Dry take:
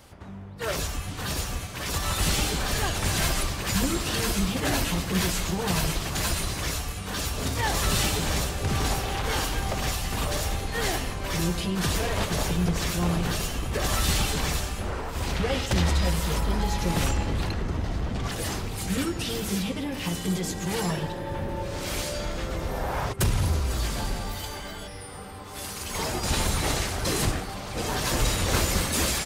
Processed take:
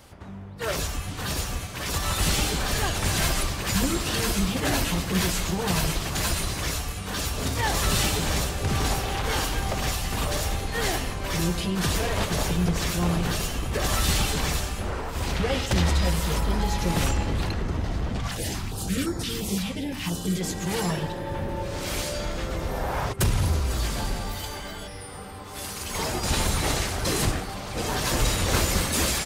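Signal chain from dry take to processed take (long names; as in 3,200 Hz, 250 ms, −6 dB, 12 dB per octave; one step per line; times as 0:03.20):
0:18.20–0:20.41: notch on a step sequencer 5.8 Hz 370–2,800 Hz
level +1 dB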